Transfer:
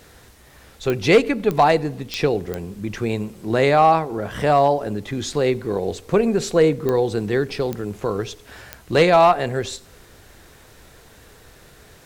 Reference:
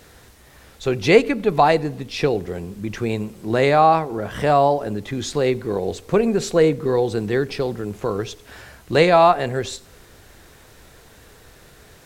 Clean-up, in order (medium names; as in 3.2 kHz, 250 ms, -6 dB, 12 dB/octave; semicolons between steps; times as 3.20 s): clip repair -6.5 dBFS; de-click